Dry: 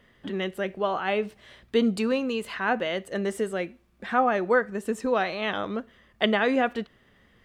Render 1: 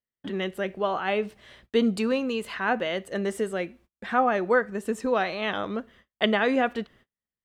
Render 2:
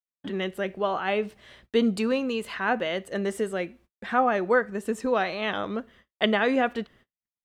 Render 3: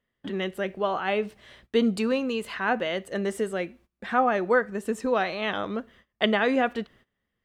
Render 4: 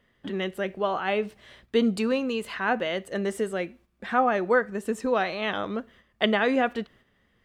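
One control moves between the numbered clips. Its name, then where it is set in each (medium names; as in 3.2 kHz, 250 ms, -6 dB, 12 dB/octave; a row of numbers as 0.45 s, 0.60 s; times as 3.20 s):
gate, range: -39 dB, -60 dB, -21 dB, -7 dB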